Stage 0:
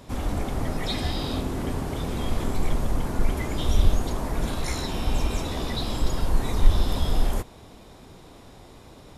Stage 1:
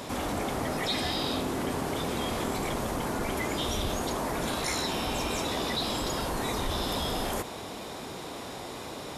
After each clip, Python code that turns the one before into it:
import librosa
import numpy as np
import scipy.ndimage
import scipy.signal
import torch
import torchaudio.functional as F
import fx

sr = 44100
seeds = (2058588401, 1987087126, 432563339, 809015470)

y = fx.highpass(x, sr, hz=350.0, slope=6)
y = fx.env_flatten(y, sr, amount_pct=50)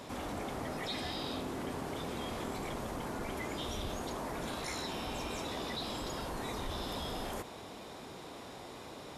y = fx.high_shelf(x, sr, hz=6400.0, db=-4.5)
y = y * librosa.db_to_amplitude(-8.0)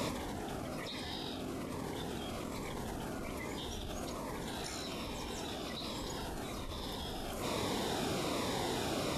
y = fx.over_compress(x, sr, threshold_db=-46.0, ratio=-1.0)
y = fx.notch_cascade(y, sr, direction='falling', hz=1.2)
y = y * librosa.db_to_amplitude(7.5)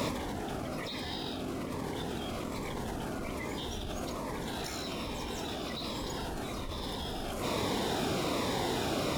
y = np.interp(np.arange(len(x)), np.arange(len(x))[::2], x[::2])
y = y * librosa.db_to_amplitude(4.0)